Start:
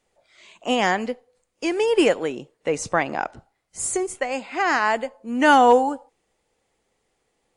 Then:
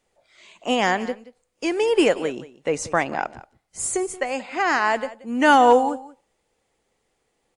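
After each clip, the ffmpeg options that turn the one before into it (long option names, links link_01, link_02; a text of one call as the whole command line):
ffmpeg -i in.wav -af "aecho=1:1:179:0.133" out.wav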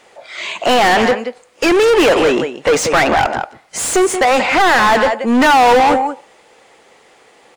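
ffmpeg -i in.wav -filter_complex "[0:a]asplit=2[link_01][link_02];[link_02]highpass=frequency=720:poles=1,volume=35dB,asoftclip=type=tanh:threshold=-3.5dB[link_03];[link_01][link_03]amix=inputs=2:normalize=0,lowpass=frequency=2600:poles=1,volume=-6dB" out.wav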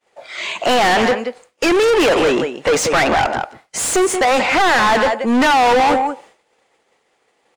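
ffmpeg -i in.wav -af "asoftclip=type=tanh:threshold=-9.5dB,agate=range=-33dB:threshold=-37dB:ratio=3:detection=peak" out.wav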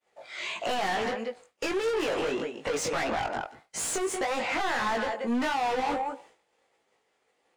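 ffmpeg -i in.wav -af "acompressor=threshold=-18dB:ratio=6,flanger=delay=17.5:depth=3.6:speed=1.6,volume=-7dB" out.wav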